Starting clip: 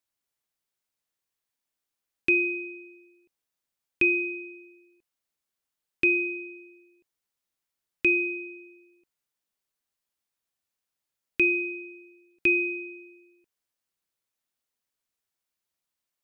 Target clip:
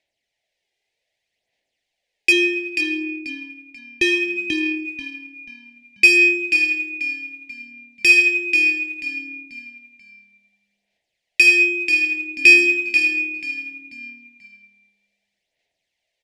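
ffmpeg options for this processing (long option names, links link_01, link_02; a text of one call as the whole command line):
ffmpeg -i in.wav -filter_complex "[0:a]asplit=3[link_01][link_02][link_03];[link_01]afade=type=out:start_time=2.31:duration=0.02[link_04];[link_02]tiltshelf=frequency=720:gain=6.5,afade=type=in:start_time=2.31:duration=0.02,afade=type=out:start_time=4.36:duration=0.02[link_05];[link_03]afade=type=in:start_time=4.36:duration=0.02[link_06];[link_04][link_05][link_06]amix=inputs=3:normalize=0,asoftclip=type=tanh:threshold=-25.5dB,asplit=5[link_07][link_08][link_09][link_10][link_11];[link_08]adelay=487,afreqshift=-37,volume=-5dB[link_12];[link_09]adelay=974,afreqshift=-74,volume=-14.1dB[link_13];[link_10]adelay=1461,afreqshift=-111,volume=-23.2dB[link_14];[link_11]adelay=1948,afreqshift=-148,volume=-32.4dB[link_15];[link_07][link_12][link_13][link_14][link_15]amix=inputs=5:normalize=0,adynamicsmooth=sensitivity=2:basefreq=3100,firequalizer=gain_entry='entry(260,0);entry(670,13);entry(1200,-18);entry(1900,14)':delay=0.05:min_phase=1,aphaser=in_gain=1:out_gain=1:delay=2.5:decay=0.41:speed=0.64:type=sinusoidal,volume=4.5dB" out.wav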